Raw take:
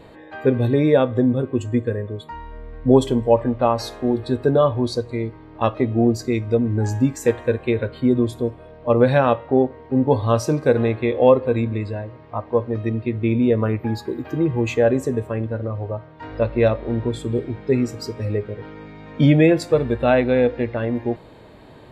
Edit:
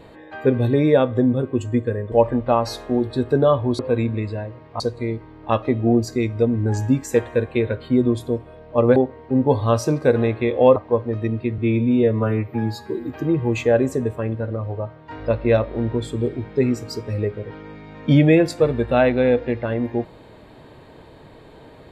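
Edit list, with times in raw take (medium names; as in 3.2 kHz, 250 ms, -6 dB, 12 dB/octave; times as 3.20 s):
2.12–3.25 s: delete
9.08–9.57 s: delete
11.37–12.38 s: move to 4.92 s
13.20–14.21 s: stretch 1.5×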